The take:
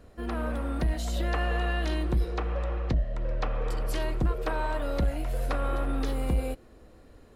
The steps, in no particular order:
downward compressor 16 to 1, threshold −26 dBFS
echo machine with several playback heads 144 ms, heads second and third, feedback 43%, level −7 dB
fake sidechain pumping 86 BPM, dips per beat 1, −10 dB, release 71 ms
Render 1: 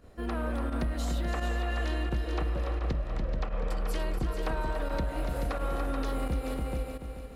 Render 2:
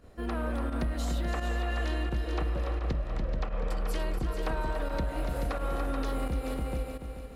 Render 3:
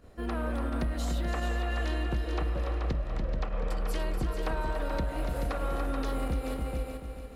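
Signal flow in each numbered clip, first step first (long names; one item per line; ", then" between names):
echo machine with several playback heads, then fake sidechain pumping, then downward compressor
echo machine with several playback heads, then downward compressor, then fake sidechain pumping
fake sidechain pumping, then echo machine with several playback heads, then downward compressor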